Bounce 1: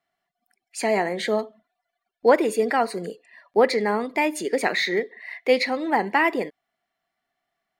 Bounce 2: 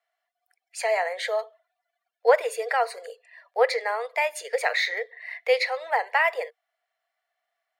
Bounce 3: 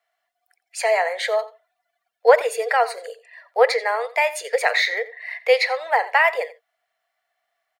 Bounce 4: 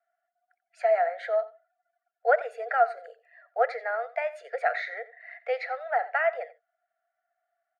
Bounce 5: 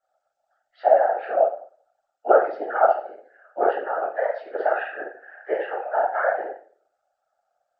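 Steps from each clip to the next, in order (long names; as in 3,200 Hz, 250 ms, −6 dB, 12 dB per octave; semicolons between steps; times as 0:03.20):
Chebyshev high-pass with heavy ripple 460 Hz, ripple 3 dB
slap from a distant wall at 15 metres, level −17 dB; level +5 dB
pair of resonant band-passes 990 Hz, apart 1 octave
hearing-aid frequency compression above 1,200 Hz 1.5 to 1; rectangular room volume 47 cubic metres, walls mixed, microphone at 1.7 metres; random phases in short frames; level −5 dB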